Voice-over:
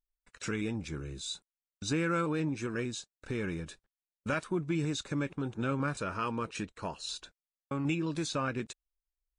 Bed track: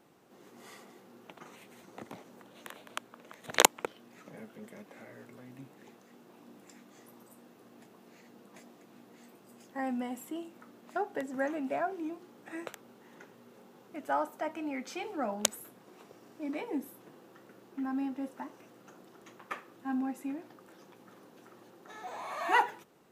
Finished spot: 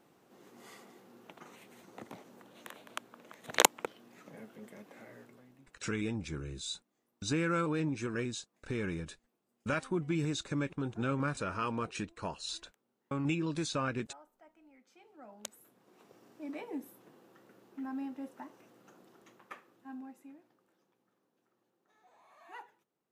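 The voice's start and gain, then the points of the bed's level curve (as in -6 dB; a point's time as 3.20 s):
5.40 s, -1.0 dB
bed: 5.16 s -2 dB
6.09 s -25 dB
14.83 s -25 dB
16.15 s -5 dB
19.11 s -5 dB
21.16 s -23 dB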